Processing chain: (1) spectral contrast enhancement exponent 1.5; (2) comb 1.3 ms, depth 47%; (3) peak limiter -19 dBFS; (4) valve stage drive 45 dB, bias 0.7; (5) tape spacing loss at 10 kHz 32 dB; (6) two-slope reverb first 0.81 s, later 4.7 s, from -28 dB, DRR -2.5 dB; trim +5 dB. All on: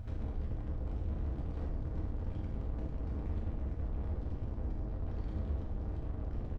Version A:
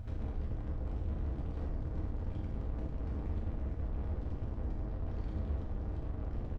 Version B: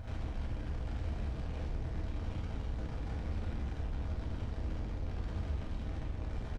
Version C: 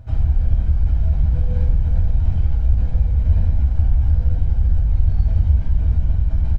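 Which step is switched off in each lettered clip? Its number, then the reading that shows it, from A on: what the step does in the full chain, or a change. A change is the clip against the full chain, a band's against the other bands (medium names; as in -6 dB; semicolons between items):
3, mean gain reduction 2.0 dB; 1, 2 kHz band +9.0 dB; 4, 125 Hz band +11.5 dB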